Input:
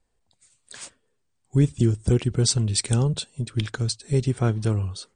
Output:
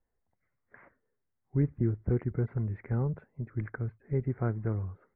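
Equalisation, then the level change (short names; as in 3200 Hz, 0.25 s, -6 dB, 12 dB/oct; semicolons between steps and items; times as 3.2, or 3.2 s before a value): Chebyshev low-pass 2100 Hz, order 6; -7.5 dB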